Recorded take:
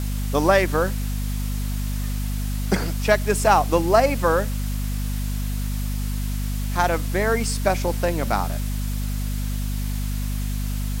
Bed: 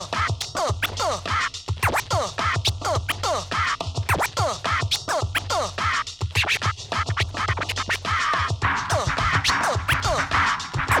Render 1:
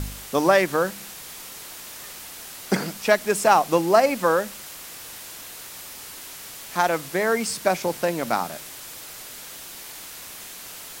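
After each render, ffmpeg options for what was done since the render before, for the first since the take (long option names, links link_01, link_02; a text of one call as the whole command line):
ffmpeg -i in.wav -af "bandreject=frequency=50:width_type=h:width=4,bandreject=frequency=100:width_type=h:width=4,bandreject=frequency=150:width_type=h:width=4,bandreject=frequency=200:width_type=h:width=4,bandreject=frequency=250:width_type=h:width=4" out.wav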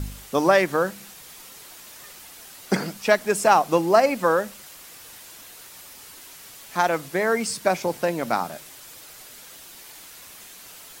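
ffmpeg -i in.wav -af "afftdn=noise_reduction=6:noise_floor=-40" out.wav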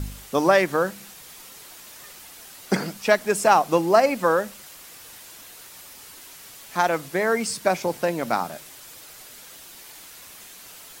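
ffmpeg -i in.wav -filter_complex "[0:a]asettb=1/sr,asplit=3[link_01][link_02][link_03];[link_01]atrim=end=8.194[link_04];[link_02]atrim=start=8.19:end=9.13,asetpts=PTS-STARTPTS,afade=type=in:duration=0.004:curve=qsin,afade=type=out:start_time=0.936:duration=0.004:curve=qsin,acrusher=bits=9:mode=log:mix=0:aa=0.000001[link_05];[link_03]atrim=start=9.126[link_06];[link_04][link_05]acrossfade=duration=0.004:curve1=hsin:curve2=qsin[link_07];[link_07][link_06]acrossfade=duration=0.004:curve1=qsin:curve2=hsin" out.wav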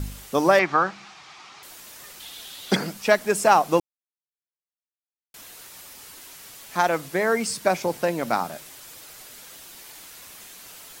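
ffmpeg -i in.wav -filter_complex "[0:a]asettb=1/sr,asplit=3[link_01][link_02][link_03];[link_01]atrim=end=0.594[link_04];[link_02]atrim=start=0.59:end=1.63,asetpts=PTS-STARTPTS,afade=type=in:duration=0.004:curve=qsin,afade=type=out:start_time=1.036:duration=0.004:curve=qsin,highpass=120,equalizer=frequency=230:width_type=q:width=4:gain=-8,equalizer=frequency=500:width_type=q:width=4:gain=-10,equalizer=frequency=800:width_type=q:width=4:gain=8,equalizer=frequency=1200:width_type=q:width=4:gain=9,equalizer=frequency=2300:width_type=q:width=4:gain=5,lowpass=frequency=5600:width=0.5412,lowpass=frequency=5600:width=1.3066[link_05];[link_03]atrim=start=1.626[link_06];[link_04][link_05]acrossfade=duration=0.004:curve1=hsin:curve2=qsin[link_07];[link_07][link_06]acrossfade=duration=0.004:curve1=qsin:curve2=hsin,asettb=1/sr,asplit=3[link_08][link_09][link_10];[link_08]atrim=end=2.204[link_11];[link_09]atrim=start=2.2:end=2.76,asetpts=PTS-STARTPTS,afade=type=in:duration=0.004:curve=qsin,afade=type=out:start_time=0.556:duration=0.004:curve=qsin,equalizer=frequency=3500:width=2.4:gain=14[link_12];[link_10]atrim=start=2.756[link_13];[link_11][link_12]acrossfade=duration=0.004:curve1=hsin:curve2=qsin[link_14];[link_14][link_13]acrossfade=duration=0.004:curve1=qsin:curve2=hsin,asplit=3[link_15][link_16][link_17];[link_15]atrim=end=3.8,asetpts=PTS-STARTPTS,afade=type=out:start_time=3.796:duration=0.004:curve=hsin[link_18];[link_16]atrim=start=3.8:end=5.34,asetpts=PTS-STARTPTS,volume=0[link_19];[link_17]atrim=start=5.34,asetpts=PTS-STARTPTS,afade=type=in:duration=0.004:curve=hsin[link_20];[link_18][link_19][link_20]concat=n=3:v=0:a=1" out.wav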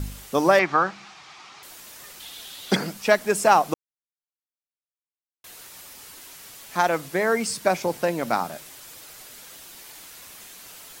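ffmpeg -i in.wav -filter_complex "[0:a]asplit=3[link_01][link_02][link_03];[link_01]atrim=end=3.74,asetpts=PTS-STARTPTS,afade=type=out:start_time=3.736:duration=0.004:curve=hsin[link_04];[link_02]atrim=start=3.74:end=5.44,asetpts=PTS-STARTPTS,volume=0[link_05];[link_03]atrim=start=5.44,asetpts=PTS-STARTPTS,afade=type=in:duration=0.004:curve=hsin[link_06];[link_04][link_05][link_06]concat=n=3:v=0:a=1" out.wav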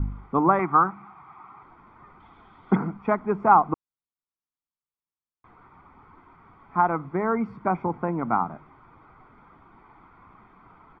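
ffmpeg -i in.wav -af "lowpass=frequency=1400:width=0.5412,lowpass=frequency=1400:width=1.3066,aecho=1:1:0.9:0.71" out.wav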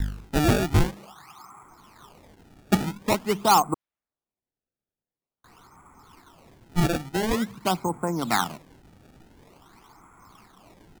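ffmpeg -i in.wav -filter_complex "[0:a]acrossover=split=390|1300[link_01][link_02][link_03];[link_02]asoftclip=type=hard:threshold=-17dB[link_04];[link_01][link_04][link_03]amix=inputs=3:normalize=0,acrusher=samples=24:mix=1:aa=0.000001:lfo=1:lforange=38.4:lforate=0.47" out.wav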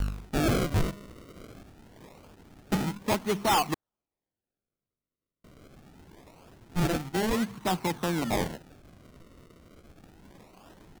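ffmpeg -i in.wav -af "acrusher=samples=30:mix=1:aa=0.000001:lfo=1:lforange=48:lforate=0.24,asoftclip=type=tanh:threshold=-20.5dB" out.wav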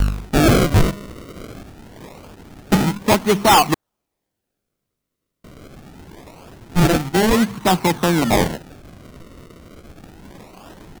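ffmpeg -i in.wav -af "volume=12dB" out.wav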